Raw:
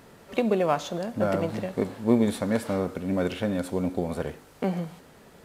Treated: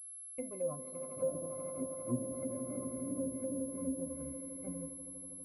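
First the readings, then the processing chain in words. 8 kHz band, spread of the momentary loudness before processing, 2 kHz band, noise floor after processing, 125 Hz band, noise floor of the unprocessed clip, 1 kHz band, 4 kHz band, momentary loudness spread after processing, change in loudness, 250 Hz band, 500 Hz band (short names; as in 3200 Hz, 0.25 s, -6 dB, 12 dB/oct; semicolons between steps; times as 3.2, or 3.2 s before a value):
+4.5 dB, 9 LU, under -25 dB, -49 dBFS, -15.0 dB, -53 dBFS, -21.0 dB, under -35 dB, 6 LU, -12.0 dB, -13.0 dB, -12.0 dB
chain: per-bin expansion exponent 1.5; on a send: swelling echo 81 ms, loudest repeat 8, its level -13 dB; on the sum: expander -27 dBFS; octave resonator C, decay 0.23 s; treble ducked by the level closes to 680 Hz, closed at -35.5 dBFS; pulse-width modulation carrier 11000 Hz; gain +1.5 dB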